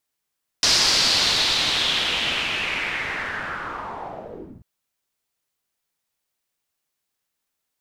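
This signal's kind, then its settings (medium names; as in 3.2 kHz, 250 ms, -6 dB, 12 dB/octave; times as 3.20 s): swept filtered noise white, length 3.99 s lowpass, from 5.1 kHz, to 120 Hz, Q 3.4, linear, gain ramp -10.5 dB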